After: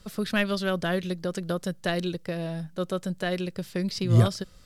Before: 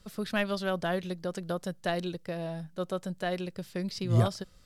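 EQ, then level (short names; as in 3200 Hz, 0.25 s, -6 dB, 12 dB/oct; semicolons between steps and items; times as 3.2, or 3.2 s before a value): dynamic EQ 800 Hz, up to -7 dB, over -46 dBFS, Q 1.6; +5.5 dB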